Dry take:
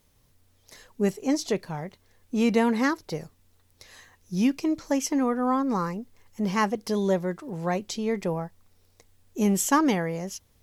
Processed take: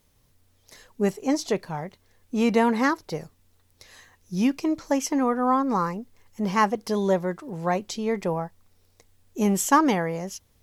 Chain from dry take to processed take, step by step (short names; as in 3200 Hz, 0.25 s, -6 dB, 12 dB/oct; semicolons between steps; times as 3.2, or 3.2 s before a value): dynamic EQ 950 Hz, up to +5 dB, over -38 dBFS, Q 0.88